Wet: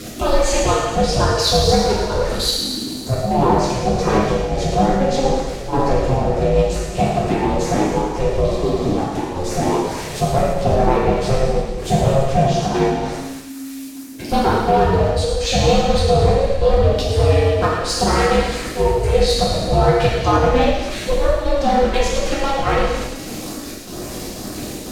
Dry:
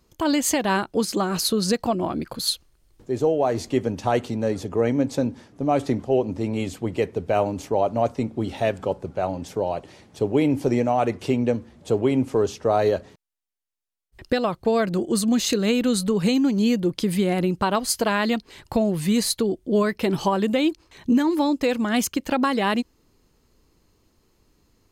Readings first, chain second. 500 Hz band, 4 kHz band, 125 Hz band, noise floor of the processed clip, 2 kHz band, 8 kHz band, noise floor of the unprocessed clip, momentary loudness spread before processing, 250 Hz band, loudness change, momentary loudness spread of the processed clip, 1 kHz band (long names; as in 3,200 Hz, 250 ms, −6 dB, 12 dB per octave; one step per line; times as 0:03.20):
+6.5 dB, +7.0 dB, +10.5 dB, −30 dBFS, +5.0 dB, +3.5 dB, −64 dBFS, 7 LU, +0.5 dB, +5.5 dB, 12 LU, +8.5 dB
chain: converter with a step at zero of −30.5 dBFS
treble cut that deepens with the level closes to 2,900 Hz, closed at −15 dBFS
gate pattern "x.xxxxx.x..xxxx" 186 BPM −12 dB
ring modulation 270 Hz
in parallel at −7 dB: wave folding −21.5 dBFS
on the sum: auto-filter notch saw up 2.2 Hz 820–4,000 Hz
reverb whose tail is shaped and stops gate 380 ms falling, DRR −6.5 dB
healed spectral selection 0:08.48–0:08.96, 720–3,600 Hz before
on a send: delay with a high-pass on its return 108 ms, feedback 72%, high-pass 2,400 Hz, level −9 dB
on the sum: level +1 dB